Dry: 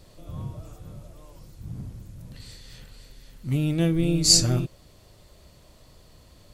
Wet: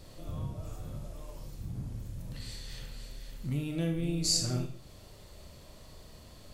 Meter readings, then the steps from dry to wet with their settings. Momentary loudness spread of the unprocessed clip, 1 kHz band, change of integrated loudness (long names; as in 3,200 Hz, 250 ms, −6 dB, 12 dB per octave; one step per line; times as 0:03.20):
23 LU, −6.0 dB, −13.5 dB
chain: downward compressor 2 to 1, threshold −37 dBFS, peak gain reduction 13.5 dB
four-comb reverb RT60 0.46 s, combs from 28 ms, DRR 4 dB